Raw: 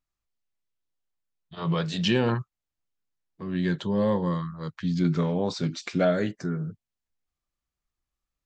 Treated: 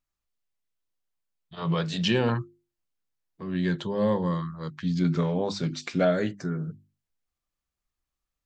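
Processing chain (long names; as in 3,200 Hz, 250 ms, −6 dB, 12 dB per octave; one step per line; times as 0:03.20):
mains-hum notches 50/100/150/200/250/300/350 Hz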